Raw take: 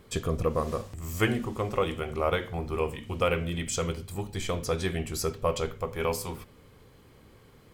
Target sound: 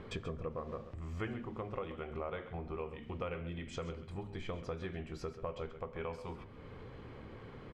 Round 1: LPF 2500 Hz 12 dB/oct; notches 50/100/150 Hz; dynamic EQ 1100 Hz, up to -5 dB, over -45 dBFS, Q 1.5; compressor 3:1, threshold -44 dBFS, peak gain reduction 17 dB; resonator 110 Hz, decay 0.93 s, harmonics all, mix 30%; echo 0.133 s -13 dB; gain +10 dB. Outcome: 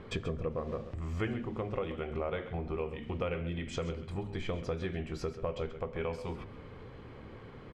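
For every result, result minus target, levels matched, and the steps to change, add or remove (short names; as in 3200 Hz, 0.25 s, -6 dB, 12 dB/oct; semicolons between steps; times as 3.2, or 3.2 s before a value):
compressor: peak gain reduction -6 dB; 1000 Hz band -3.5 dB
change: compressor 3:1, threshold -52.5 dBFS, peak gain reduction 22.5 dB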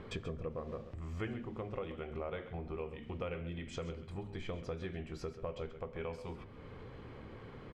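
1000 Hz band -2.5 dB
remove: dynamic EQ 1100 Hz, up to -5 dB, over -45 dBFS, Q 1.5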